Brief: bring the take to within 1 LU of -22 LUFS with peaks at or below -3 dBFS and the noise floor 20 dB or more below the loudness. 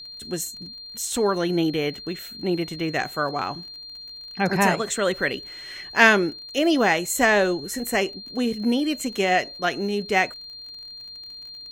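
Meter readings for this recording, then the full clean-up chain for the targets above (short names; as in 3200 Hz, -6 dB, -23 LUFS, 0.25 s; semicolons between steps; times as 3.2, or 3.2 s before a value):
ticks 37/s; steady tone 4200 Hz; tone level -37 dBFS; loudness -23.0 LUFS; peak -1.5 dBFS; loudness target -22.0 LUFS
-> de-click; notch 4200 Hz, Q 30; gain +1 dB; limiter -3 dBFS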